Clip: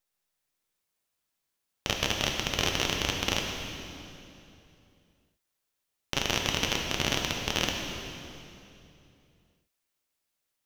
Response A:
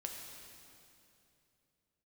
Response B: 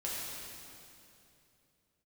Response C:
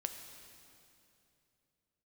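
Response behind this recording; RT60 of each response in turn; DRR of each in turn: A; 2.8, 2.8, 2.8 seconds; 1.0, −7.0, 5.5 decibels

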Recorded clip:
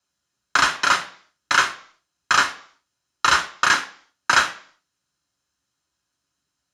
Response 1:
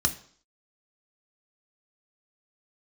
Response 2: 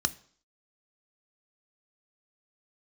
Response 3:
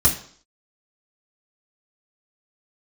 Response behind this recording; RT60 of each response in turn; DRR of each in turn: 1; 0.55, 0.55, 0.55 seconds; 5.0, 11.0, −4.5 decibels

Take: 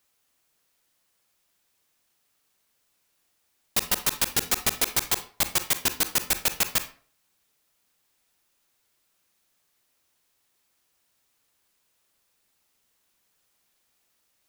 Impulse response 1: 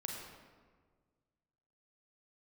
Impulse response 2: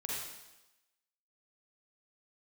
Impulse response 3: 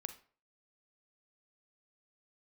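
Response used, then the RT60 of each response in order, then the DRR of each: 3; 1.6, 1.0, 0.45 seconds; −0.5, −5.0, 9.5 decibels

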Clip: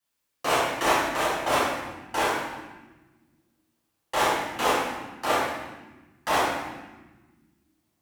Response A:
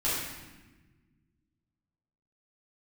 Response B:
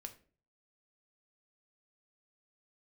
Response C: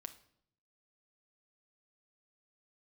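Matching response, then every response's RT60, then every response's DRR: A; 1.2, 0.40, 0.65 seconds; −11.0, 5.5, 7.0 decibels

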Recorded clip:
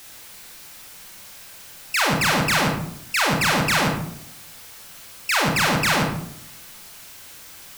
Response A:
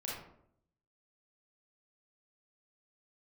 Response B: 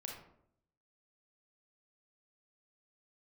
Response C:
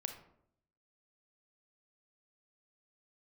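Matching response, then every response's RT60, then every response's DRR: B; 0.70, 0.70, 0.70 seconds; −6.0, −0.5, 5.5 decibels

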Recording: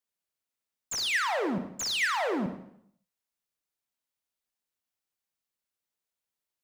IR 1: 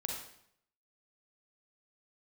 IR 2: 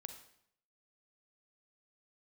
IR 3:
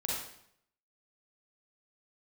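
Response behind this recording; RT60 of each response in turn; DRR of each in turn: 2; 0.70, 0.70, 0.70 seconds; 0.0, 7.0, −4.5 decibels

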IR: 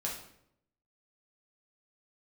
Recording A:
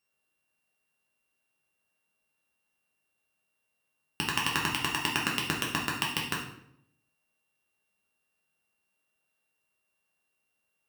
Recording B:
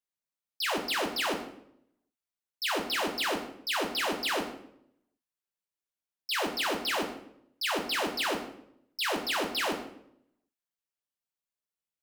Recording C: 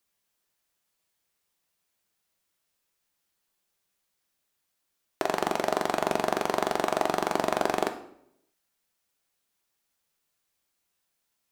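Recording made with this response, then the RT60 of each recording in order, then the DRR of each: A; 0.75, 0.75, 0.75 seconds; −3.5, 1.0, 6.5 decibels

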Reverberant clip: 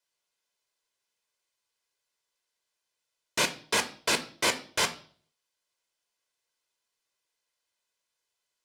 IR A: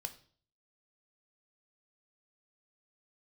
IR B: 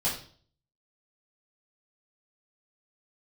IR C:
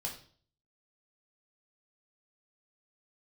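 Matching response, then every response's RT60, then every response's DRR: A; 0.50, 0.45, 0.45 seconds; 7.5, −9.0, −1.5 decibels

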